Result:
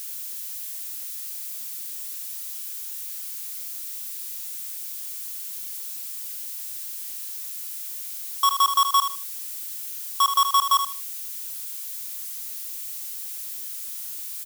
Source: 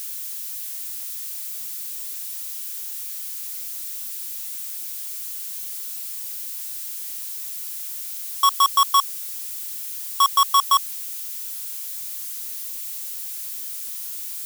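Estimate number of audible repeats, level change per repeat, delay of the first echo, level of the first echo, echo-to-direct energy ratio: 3, −13.0 dB, 77 ms, −8.0 dB, −8.0 dB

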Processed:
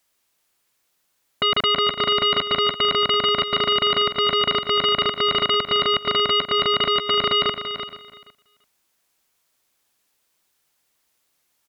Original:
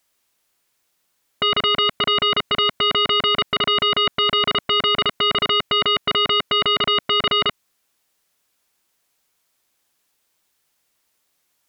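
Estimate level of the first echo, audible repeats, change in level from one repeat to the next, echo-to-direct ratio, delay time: −9.5 dB, 4, repeats not evenly spaced, −9.0 dB, 338 ms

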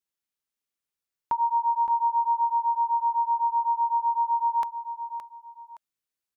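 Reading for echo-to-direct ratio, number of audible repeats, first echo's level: −10.0 dB, 2, −10.5 dB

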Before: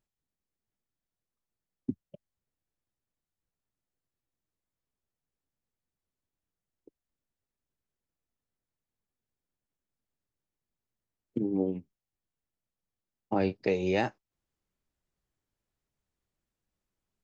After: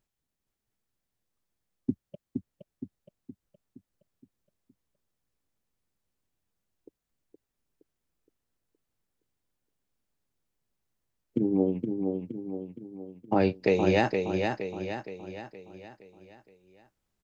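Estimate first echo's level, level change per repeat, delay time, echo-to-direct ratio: −5.0 dB, −6.0 dB, 468 ms, −4.0 dB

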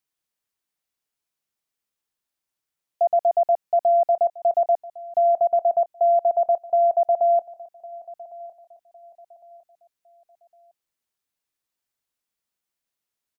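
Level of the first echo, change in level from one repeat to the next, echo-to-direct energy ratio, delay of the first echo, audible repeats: −19.5 dB, −9.5 dB, −19.0 dB, 1,107 ms, 2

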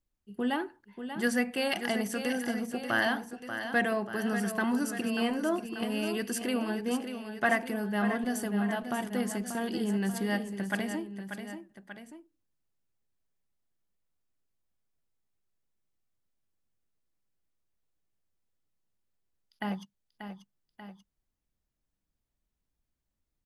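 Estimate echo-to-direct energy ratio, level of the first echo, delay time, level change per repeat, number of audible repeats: −7.5 dB, −9.0 dB, 587 ms, −4.5 dB, 2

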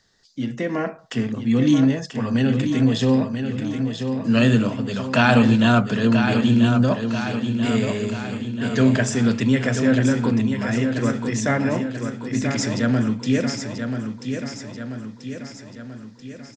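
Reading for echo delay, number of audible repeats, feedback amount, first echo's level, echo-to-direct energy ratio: 986 ms, 6, 55%, −7.0 dB, −5.5 dB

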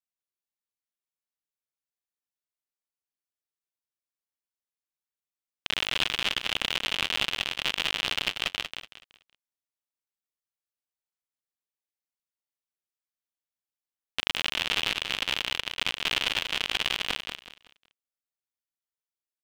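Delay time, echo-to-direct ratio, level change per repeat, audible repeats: 187 ms, −6.5 dB, −10.0 dB, 3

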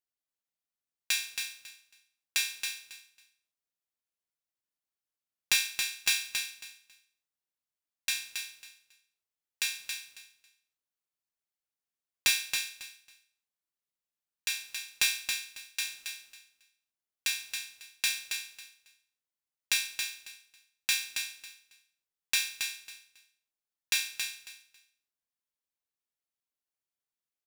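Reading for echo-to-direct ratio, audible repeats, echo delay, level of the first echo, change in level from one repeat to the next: −6.0 dB, 3, 274 ms, −6.0 dB, −14.0 dB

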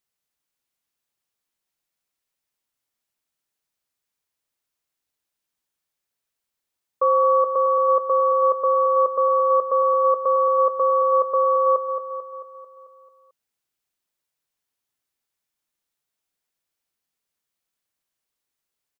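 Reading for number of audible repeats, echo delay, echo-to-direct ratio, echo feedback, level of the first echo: 6, 221 ms, −7.0 dB, 56%, −8.5 dB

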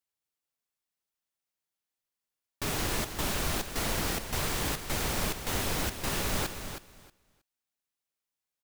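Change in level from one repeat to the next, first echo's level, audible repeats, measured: −15.5 dB, −9.0 dB, 2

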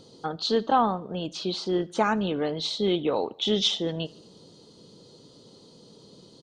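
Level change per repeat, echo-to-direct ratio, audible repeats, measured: −5.5 dB, −22.0 dB, 3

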